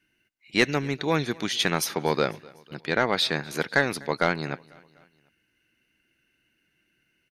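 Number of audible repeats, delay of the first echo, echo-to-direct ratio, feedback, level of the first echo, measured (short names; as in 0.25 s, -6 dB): 2, 0.248 s, -22.5 dB, 53%, -24.0 dB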